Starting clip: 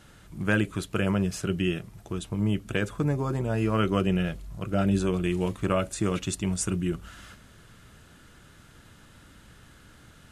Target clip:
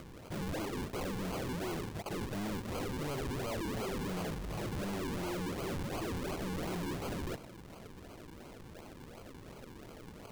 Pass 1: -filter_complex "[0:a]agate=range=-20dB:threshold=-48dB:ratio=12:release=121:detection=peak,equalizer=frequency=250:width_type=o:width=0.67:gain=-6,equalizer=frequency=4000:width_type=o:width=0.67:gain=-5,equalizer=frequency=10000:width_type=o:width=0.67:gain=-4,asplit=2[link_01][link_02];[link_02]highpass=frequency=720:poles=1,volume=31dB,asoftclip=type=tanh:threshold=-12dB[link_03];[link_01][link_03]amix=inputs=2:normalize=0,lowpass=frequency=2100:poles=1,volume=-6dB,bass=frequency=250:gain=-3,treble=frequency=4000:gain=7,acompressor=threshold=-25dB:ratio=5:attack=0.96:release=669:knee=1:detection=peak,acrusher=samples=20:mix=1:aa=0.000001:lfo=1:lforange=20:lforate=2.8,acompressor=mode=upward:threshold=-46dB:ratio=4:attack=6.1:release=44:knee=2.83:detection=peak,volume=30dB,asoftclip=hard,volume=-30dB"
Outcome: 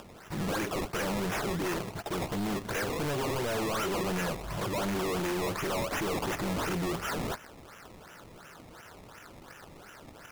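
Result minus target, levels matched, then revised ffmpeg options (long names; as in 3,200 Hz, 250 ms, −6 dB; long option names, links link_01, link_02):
sample-and-hold swept by an LFO: distortion −7 dB; gain into a clipping stage and back: distortion −5 dB
-filter_complex "[0:a]agate=range=-20dB:threshold=-48dB:ratio=12:release=121:detection=peak,equalizer=frequency=250:width_type=o:width=0.67:gain=-6,equalizer=frequency=4000:width_type=o:width=0.67:gain=-5,equalizer=frequency=10000:width_type=o:width=0.67:gain=-4,asplit=2[link_01][link_02];[link_02]highpass=frequency=720:poles=1,volume=31dB,asoftclip=type=tanh:threshold=-12dB[link_03];[link_01][link_03]amix=inputs=2:normalize=0,lowpass=frequency=2100:poles=1,volume=-6dB,bass=frequency=250:gain=-3,treble=frequency=4000:gain=7,acompressor=threshold=-25dB:ratio=5:attack=0.96:release=669:knee=1:detection=peak,acrusher=samples=47:mix=1:aa=0.000001:lfo=1:lforange=47:lforate=2.8,acompressor=mode=upward:threshold=-46dB:ratio=4:attack=6.1:release=44:knee=2.83:detection=peak,volume=36.5dB,asoftclip=hard,volume=-36.5dB"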